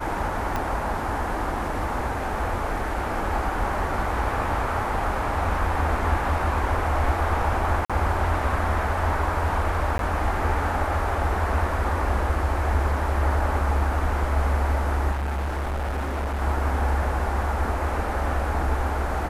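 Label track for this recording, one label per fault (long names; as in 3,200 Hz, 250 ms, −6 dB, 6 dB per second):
0.560000	0.560000	click −13 dBFS
7.850000	7.900000	drop-out 46 ms
9.980000	9.990000	drop-out 12 ms
15.110000	16.400000	clipping −24 dBFS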